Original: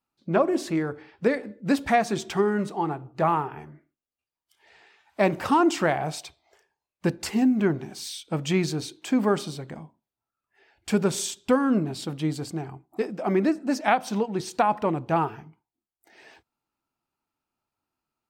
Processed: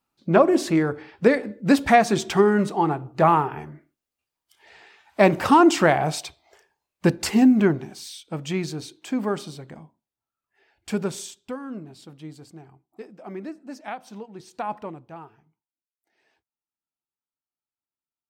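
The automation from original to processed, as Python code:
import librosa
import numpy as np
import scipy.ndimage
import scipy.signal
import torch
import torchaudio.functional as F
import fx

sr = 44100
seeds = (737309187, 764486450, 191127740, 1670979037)

y = fx.gain(x, sr, db=fx.line((7.57, 5.5), (8.06, -3.0), (11.03, -3.0), (11.55, -12.5), (14.51, -12.5), (14.71, -6.0), (15.15, -17.5)))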